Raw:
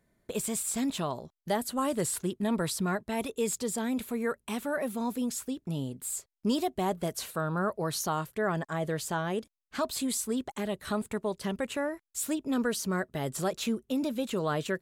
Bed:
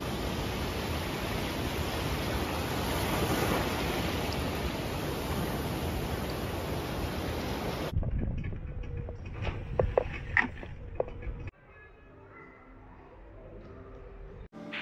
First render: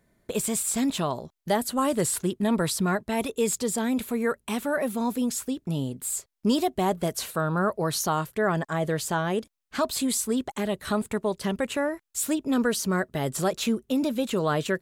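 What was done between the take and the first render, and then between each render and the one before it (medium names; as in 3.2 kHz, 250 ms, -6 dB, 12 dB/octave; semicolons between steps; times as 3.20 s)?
trim +5 dB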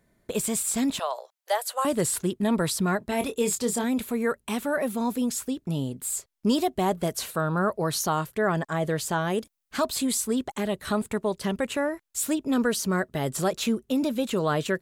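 0.99–1.85 s: steep high-pass 500 Hz 48 dB/octave; 2.99–3.84 s: doubling 25 ms -8 dB; 9.21–9.86 s: treble shelf 8.1 kHz +7.5 dB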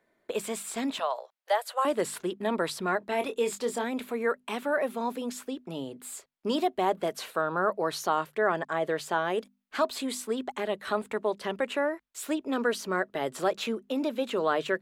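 three-band isolator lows -19 dB, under 280 Hz, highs -12 dB, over 3.9 kHz; hum notches 50/100/150/200/250 Hz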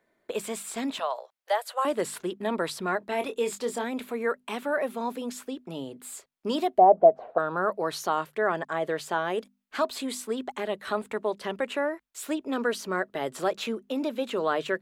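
6.78–7.38 s: resonant low-pass 690 Hz, resonance Q 7.7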